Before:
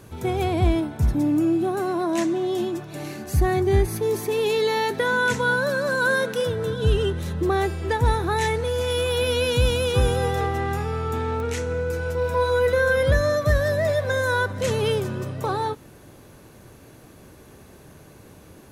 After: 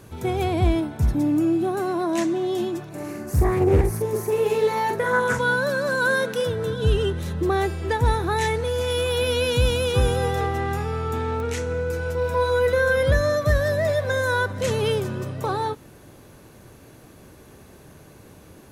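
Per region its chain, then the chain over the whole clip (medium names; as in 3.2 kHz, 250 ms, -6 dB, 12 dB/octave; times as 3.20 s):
2.89–5.39 s: peaking EQ 3.6 kHz -12.5 dB 1.1 oct + doubling 44 ms -3 dB + loudspeaker Doppler distortion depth 0.62 ms
whole clip: none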